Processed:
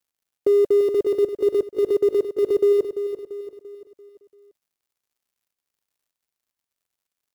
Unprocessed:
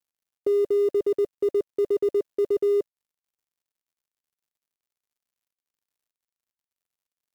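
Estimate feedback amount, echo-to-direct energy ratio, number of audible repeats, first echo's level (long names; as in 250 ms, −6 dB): 46%, −8.5 dB, 4, −9.5 dB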